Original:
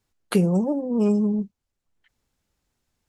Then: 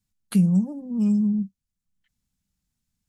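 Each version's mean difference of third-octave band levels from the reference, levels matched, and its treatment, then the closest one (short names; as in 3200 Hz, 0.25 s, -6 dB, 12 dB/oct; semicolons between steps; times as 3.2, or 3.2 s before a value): 5.0 dB: EQ curve 130 Hz 0 dB, 190 Hz +6 dB, 390 Hz -16 dB, 9000 Hz +1 dB; gain -2.5 dB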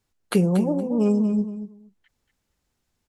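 3.0 dB: feedback echo 0.234 s, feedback 16%, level -10 dB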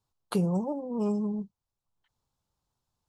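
1.5 dB: graphic EQ 125/250/1000/2000/4000 Hz +7/-3/+10/-10/+4 dB; gain -8.5 dB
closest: third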